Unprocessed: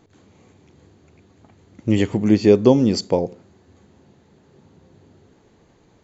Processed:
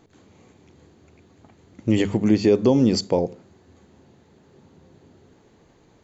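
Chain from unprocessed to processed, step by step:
brickwall limiter −7 dBFS, peak gain reduction 6 dB
mains-hum notches 50/100/150/200 Hz

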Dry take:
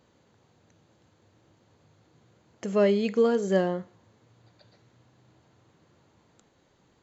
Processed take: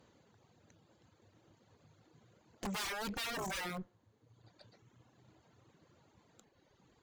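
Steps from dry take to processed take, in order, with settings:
wrap-around overflow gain 25.5 dB
tube saturation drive 39 dB, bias 0.7
reverb reduction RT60 1.2 s
level +2.5 dB

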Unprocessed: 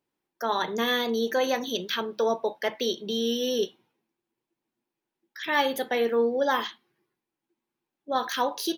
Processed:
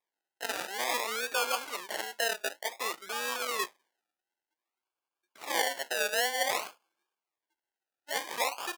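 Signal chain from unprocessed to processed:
sample-and-hold swept by an LFO 31×, swing 60% 0.54 Hz
high-pass filter 900 Hz 12 dB per octave
tape wow and flutter 99 cents

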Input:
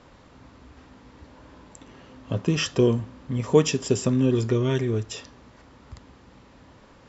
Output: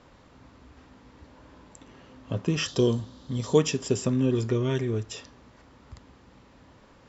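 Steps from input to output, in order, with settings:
0:02.68–0:03.58: high shelf with overshoot 3,000 Hz +6.5 dB, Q 3
level −3 dB

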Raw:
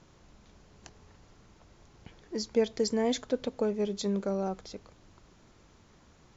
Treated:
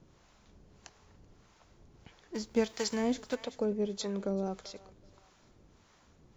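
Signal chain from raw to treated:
0:02.34–0:03.34: spectral envelope flattened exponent 0.6
on a send: feedback echo with a high-pass in the loop 383 ms, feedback 38%, high-pass 520 Hz, level −19 dB
on the sum: two-band tremolo in antiphase 1.6 Hz, depth 70%, crossover 570 Hz
0:04.01–0:04.71: multiband upward and downward compressor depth 40%

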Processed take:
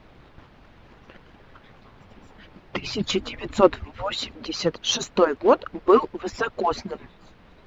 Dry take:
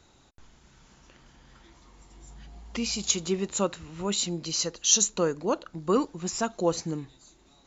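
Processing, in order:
harmonic-percussive split with one part muted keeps percussive
0:02.73–0:03.81: low-shelf EQ 210 Hz +11.5 dB
in parallel at −6 dB: log-companded quantiser 4 bits
on the sum: background noise pink −58 dBFS
high-frequency loss of the air 330 metres
level +8.5 dB

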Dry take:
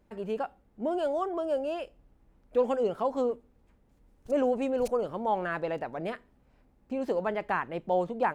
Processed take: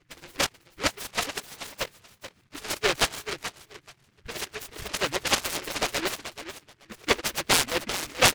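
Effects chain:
harmonic-percussive split with one part muted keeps percussive
notch filter 1,800 Hz, Q 10
repeating echo 432 ms, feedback 18%, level −11 dB
low-pass that shuts in the quiet parts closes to 1,700 Hz, open at −29.5 dBFS
short delay modulated by noise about 1,800 Hz, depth 0.36 ms
level +8.5 dB

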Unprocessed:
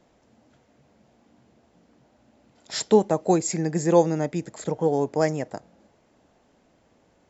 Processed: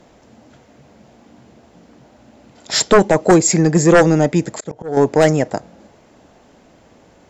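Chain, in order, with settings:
sine wavefolder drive 9 dB, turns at −4.5 dBFS
0:04.53–0:04.97: volume swells 325 ms

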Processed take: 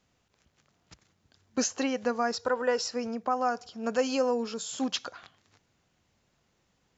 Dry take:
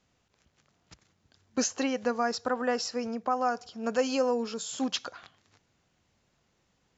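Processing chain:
0:02.37–0:02.88: comb filter 2.1 ms, depth 46%

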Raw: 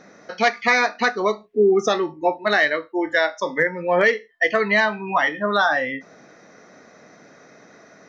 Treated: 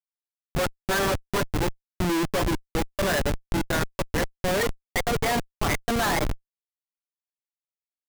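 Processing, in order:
gliding playback speed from 72% → 128%
comb filter 7 ms, depth 55%
automatic gain control gain up to 4 dB
comparator with hysteresis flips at −15 dBFS
level −4.5 dB

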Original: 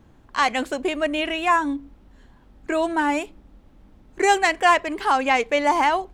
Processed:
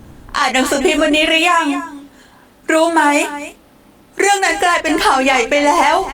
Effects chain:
0:01.26–0:04.46: high-pass filter 420 Hz 6 dB per octave
high-shelf EQ 4,500 Hz +10 dB
downward compressor 20 to 1, threshold −22 dBFS, peak gain reduction 12.5 dB
double-tracking delay 31 ms −6 dB
single-tap delay 262 ms −14.5 dB
boost into a limiter +15.5 dB
level −1.5 dB
Opus 32 kbit/s 48,000 Hz

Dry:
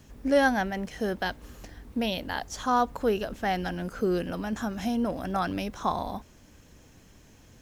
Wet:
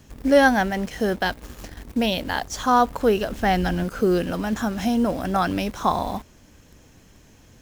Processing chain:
0:03.35–0:03.84: low-shelf EQ 150 Hz +8 dB
in parallel at −6 dB: bit reduction 7 bits
on the sum: level +3 dB

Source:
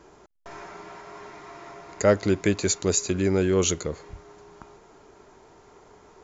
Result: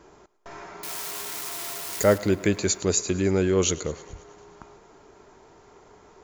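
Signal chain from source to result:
0:00.83–0:02.18: spike at every zero crossing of −22 dBFS
feedback echo with a high-pass in the loop 106 ms, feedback 66%, high-pass 210 Hz, level −19.5 dB

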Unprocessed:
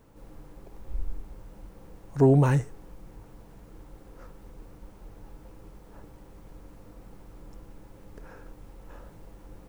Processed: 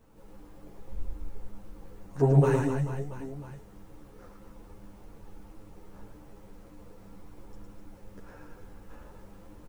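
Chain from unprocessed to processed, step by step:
reverse bouncing-ball delay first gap 110 ms, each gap 1.3×, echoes 5
string-ensemble chorus

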